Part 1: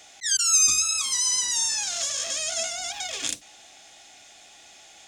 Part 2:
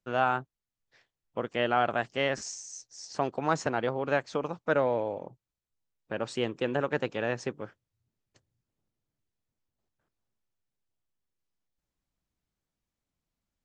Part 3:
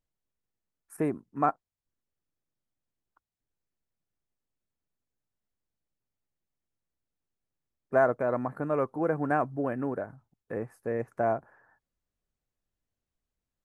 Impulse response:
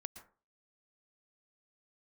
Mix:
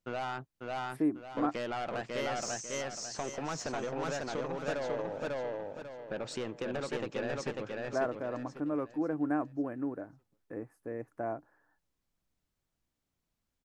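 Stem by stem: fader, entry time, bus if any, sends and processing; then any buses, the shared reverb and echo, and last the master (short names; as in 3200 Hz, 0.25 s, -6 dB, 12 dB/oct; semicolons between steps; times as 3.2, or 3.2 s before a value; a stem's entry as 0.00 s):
off
+0.5 dB, 0.00 s, bus A, no send, echo send -5.5 dB, soft clip -27 dBFS, distortion -8 dB
-9.5 dB, 0.00 s, no bus, no send, no echo send, bell 300 Hz +13.5 dB 0.24 oct
bus A: 0.0 dB, compressor, threshold -34 dBFS, peak gain reduction 5.5 dB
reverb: off
echo: feedback echo 0.545 s, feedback 34%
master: dry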